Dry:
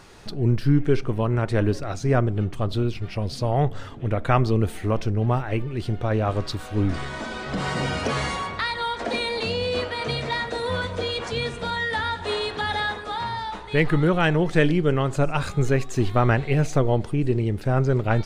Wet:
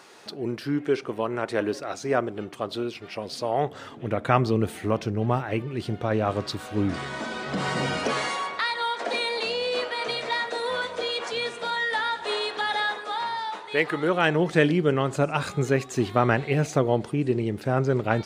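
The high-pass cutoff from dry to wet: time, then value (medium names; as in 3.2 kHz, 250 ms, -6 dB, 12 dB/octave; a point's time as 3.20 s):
3.49 s 330 Hz
4.27 s 140 Hz
7.89 s 140 Hz
8.35 s 400 Hz
13.98 s 400 Hz
14.46 s 160 Hz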